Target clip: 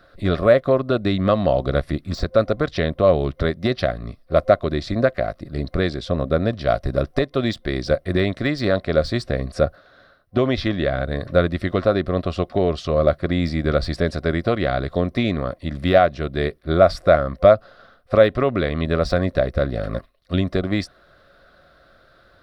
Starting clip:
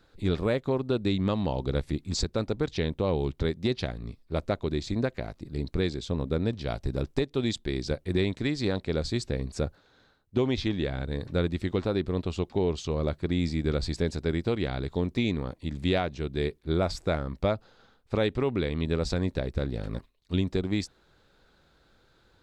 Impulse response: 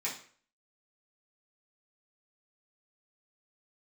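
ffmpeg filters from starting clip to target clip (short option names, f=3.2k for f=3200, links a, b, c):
-af "deesser=0.85,superequalizer=8b=3.55:9b=0.708:10b=2.51:11b=2:15b=0.355,volume=6dB"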